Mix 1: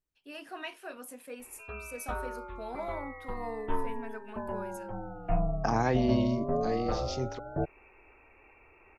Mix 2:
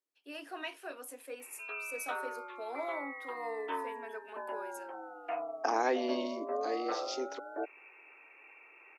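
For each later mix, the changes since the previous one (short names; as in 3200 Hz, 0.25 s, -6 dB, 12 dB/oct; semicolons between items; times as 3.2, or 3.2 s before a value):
background: add tilt shelf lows -7.5 dB; master: add Chebyshev high-pass 280 Hz, order 5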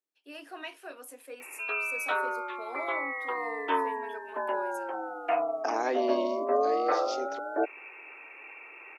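background +9.5 dB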